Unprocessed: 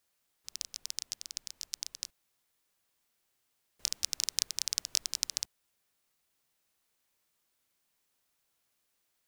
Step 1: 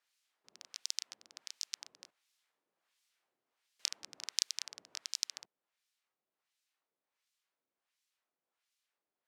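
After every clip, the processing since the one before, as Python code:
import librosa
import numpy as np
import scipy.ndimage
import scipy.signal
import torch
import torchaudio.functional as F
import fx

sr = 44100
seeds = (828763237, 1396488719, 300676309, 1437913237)

y = scipy.signal.sosfilt(scipy.signal.butter(2, 140.0, 'highpass', fs=sr, output='sos'), x)
y = fx.filter_lfo_bandpass(y, sr, shape='sine', hz=1.4, low_hz=370.0, high_hz=4400.0, q=0.73)
y = fx.rider(y, sr, range_db=3, speed_s=2.0)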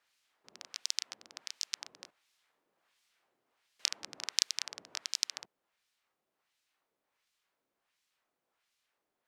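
y = fx.high_shelf(x, sr, hz=3700.0, db=-7.5)
y = y * librosa.db_to_amplitude(8.5)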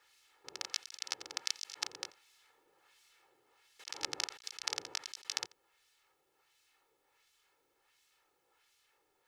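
y = x + 10.0 ** (-23.0 / 20.0) * np.pad(x, (int(86 * sr / 1000.0), 0))[:len(x)]
y = fx.over_compress(y, sr, threshold_db=-42.0, ratio=-0.5)
y = y + 0.77 * np.pad(y, (int(2.3 * sr / 1000.0), 0))[:len(y)]
y = y * librosa.db_to_amplitude(1.0)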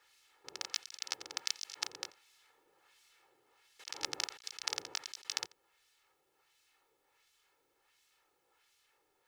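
y = fx.mod_noise(x, sr, seeds[0], snr_db=30)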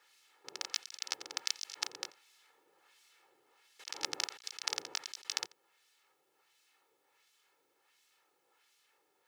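y = scipy.signal.sosfilt(scipy.signal.butter(2, 160.0, 'highpass', fs=sr, output='sos'), x)
y = y * librosa.db_to_amplitude(1.0)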